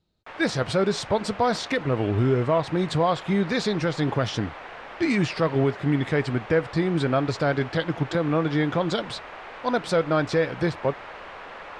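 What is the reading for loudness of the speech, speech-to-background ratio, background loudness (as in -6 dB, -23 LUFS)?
-24.5 LUFS, 15.0 dB, -39.5 LUFS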